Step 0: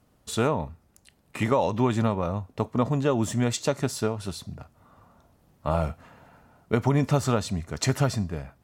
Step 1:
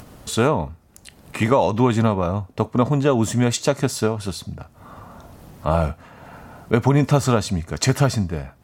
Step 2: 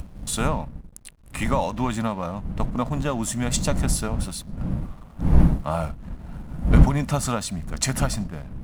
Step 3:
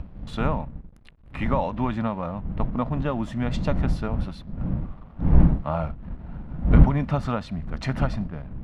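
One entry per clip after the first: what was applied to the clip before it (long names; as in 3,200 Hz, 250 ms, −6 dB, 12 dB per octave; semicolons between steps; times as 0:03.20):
upward compression, threshold −36 dBFS; level +6 dB
wind on the microphone 140 Hz −18 dBFS; graphic EQ with 15 bands 100 Hz −9 dB, 400 Hz −11 dB, 10,000 Hz +11 dB; slack as between gear wheels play −35.5 dBFS; level −4 dB
high-frequency loss of the air 330 metres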